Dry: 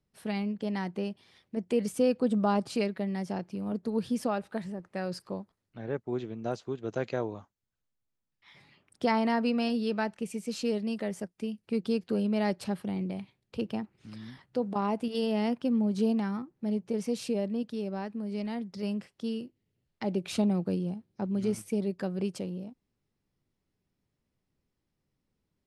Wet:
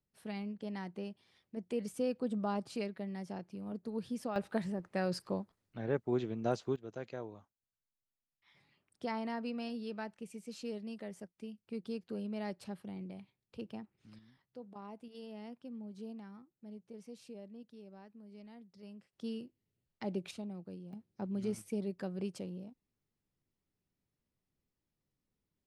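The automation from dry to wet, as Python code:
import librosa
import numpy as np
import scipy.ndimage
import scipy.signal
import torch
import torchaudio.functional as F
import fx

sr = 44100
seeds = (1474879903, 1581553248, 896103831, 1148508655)

y = fx.gain(x, sr, db=fx.steps((0.0, -9.0), (4.36, 0.0), (6.76, -11.5), (14.19, -19.0), (19.13, -7.0), (20.31, -17.0), (20.93, -7.0)))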